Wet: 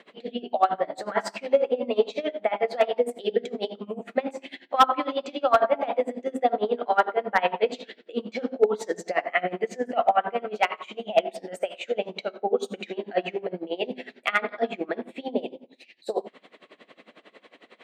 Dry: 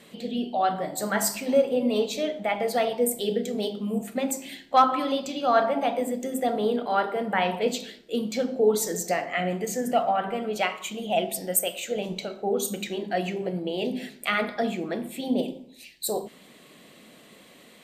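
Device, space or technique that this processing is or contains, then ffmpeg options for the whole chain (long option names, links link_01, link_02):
helicopter radio: -af "highpass=370,lowpass=2600,aeval=exprs='val(0)*pow(10,-22*(0.5-0.5*cos(2*PI*11*n/s))/20)':channel_layout=same,asoftclip=type=hard:threshold=-17dB,volume=8dB"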